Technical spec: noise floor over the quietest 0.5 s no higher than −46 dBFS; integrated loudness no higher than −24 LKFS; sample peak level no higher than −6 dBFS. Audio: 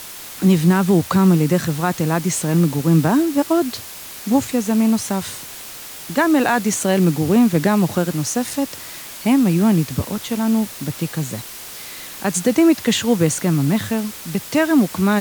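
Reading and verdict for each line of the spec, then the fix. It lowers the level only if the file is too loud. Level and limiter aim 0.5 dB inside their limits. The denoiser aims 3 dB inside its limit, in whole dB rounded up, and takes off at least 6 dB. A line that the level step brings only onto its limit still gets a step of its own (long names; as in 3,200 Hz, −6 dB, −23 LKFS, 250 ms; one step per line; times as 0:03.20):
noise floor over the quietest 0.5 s −35 dBFS: out of spec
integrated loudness −18.0 LKFS: out of spec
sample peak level −4.5 dBFS: out of spec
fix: broadband denoise 8 dB, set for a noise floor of −35 dBFS
level −6.5 dB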